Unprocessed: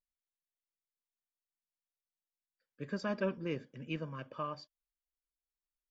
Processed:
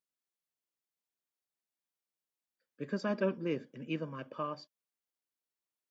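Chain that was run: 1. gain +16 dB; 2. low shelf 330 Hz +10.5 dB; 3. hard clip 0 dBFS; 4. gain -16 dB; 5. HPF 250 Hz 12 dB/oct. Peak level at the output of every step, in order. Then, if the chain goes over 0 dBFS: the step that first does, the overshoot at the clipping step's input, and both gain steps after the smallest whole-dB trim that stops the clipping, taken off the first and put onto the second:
-6.0, -3.0, -3.0, -19.0, -19.5 dBFS; no overload

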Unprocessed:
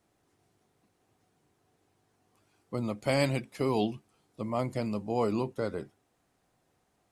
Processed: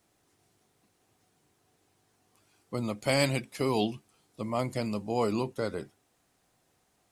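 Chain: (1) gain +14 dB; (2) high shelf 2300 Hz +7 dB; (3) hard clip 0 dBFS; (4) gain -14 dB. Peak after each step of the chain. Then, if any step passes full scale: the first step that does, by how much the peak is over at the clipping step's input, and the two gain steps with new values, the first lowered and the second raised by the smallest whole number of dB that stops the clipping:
+1.0, +3.0, 0.0, -14.0 dBFS; step 1, 3.0 dB; step 1 +11 dB, step 4 -11 dB

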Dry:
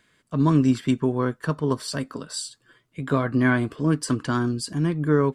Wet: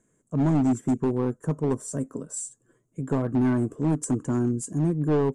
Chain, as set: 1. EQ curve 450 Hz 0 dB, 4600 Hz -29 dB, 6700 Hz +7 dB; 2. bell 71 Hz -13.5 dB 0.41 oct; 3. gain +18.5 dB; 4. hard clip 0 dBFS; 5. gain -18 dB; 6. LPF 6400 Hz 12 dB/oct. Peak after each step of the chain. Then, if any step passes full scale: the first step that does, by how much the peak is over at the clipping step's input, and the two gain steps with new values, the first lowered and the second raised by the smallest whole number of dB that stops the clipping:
-8.5, -9.0, +9.5, 0.0, -18.0, -18.0 dBFS; step 3, 9.5 dB; step 3 +8.5 dB, step 5 -8 dB

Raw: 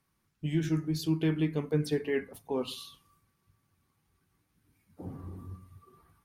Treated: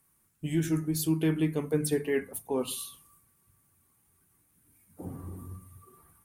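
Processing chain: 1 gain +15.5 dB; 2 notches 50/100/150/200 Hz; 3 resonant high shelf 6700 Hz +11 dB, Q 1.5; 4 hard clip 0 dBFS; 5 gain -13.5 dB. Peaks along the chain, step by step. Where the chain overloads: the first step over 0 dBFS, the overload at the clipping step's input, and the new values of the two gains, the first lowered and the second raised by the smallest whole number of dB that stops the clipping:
-1.5, -2.0, -2.0, -2.0, -15.5 dBFS; no overload

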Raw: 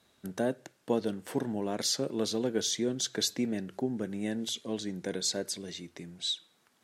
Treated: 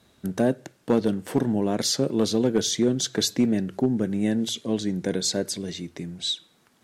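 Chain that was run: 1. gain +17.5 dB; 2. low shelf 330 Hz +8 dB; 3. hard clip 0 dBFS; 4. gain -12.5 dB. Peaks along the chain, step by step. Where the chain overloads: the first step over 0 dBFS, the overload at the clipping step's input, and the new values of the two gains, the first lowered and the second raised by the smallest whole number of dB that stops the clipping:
+2.0, +4.5, 0.0, -12.5 dBFS; step 1, 4.5 dB; step 1 +12.5 dB, step 4 -7.5 dB

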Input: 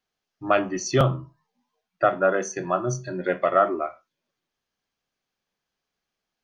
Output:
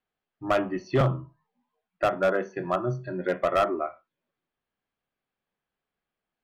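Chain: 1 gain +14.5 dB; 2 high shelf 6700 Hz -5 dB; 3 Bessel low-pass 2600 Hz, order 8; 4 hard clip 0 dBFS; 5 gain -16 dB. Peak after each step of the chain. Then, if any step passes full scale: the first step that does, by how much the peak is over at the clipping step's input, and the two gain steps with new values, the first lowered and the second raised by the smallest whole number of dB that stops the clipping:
+8.0, +8.0, +7.5, 0.0, -16.0 dBFS; step 1, 7.5 dB; step 1 +6.5 dB, step 5 -8 dB

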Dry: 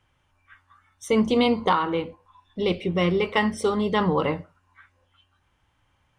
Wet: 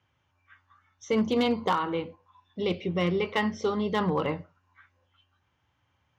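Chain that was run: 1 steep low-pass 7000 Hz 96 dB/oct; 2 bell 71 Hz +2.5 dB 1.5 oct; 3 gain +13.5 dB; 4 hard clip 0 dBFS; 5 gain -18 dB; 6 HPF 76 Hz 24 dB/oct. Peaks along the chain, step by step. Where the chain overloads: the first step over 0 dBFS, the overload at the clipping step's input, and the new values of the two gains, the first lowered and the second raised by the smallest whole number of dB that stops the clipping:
-9.5, -9.5, +4.0, 0.0, -18.0, -14.5 dBFS; step 3, 4.0 dB; step 3 +9.5 dB, step 5 -14 dB

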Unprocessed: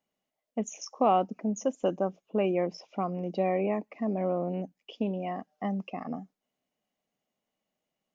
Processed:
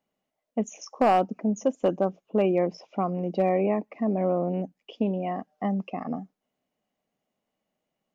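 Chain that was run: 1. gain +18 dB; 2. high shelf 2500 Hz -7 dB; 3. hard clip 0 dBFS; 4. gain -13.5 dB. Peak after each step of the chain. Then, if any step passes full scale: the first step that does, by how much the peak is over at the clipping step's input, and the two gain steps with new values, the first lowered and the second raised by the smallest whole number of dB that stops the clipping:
+5.5, +5.0, 0.0, -13.5 dBFS; step 1, 5.0 dB; step 1 +13 dB, step 4 -8.5 dB

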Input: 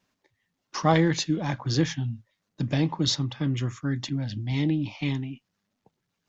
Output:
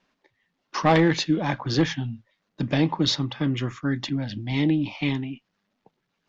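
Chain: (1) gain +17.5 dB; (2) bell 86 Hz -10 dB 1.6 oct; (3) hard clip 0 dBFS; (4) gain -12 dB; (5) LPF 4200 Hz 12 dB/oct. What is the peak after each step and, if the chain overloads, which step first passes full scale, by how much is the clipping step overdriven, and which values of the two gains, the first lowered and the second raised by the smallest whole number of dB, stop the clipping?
+9.0, +9.0, 0.0, -12.0, -11.5 dBFS; step 1, 9.0 dB; step 1 +8.5 dB, step 4 -3 dB

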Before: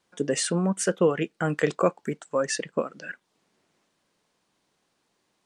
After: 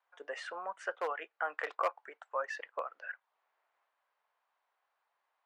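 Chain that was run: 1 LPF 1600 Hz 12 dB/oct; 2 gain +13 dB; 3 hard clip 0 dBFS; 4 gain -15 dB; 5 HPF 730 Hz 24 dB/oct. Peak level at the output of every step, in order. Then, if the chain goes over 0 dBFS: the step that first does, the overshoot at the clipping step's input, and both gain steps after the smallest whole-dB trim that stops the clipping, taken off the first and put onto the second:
-8.5, +4.5, 0.0, -15.0, -19.5 dBFS; step 2, 4.5 dB; step 2 +8 dB, step 4 -10 dB

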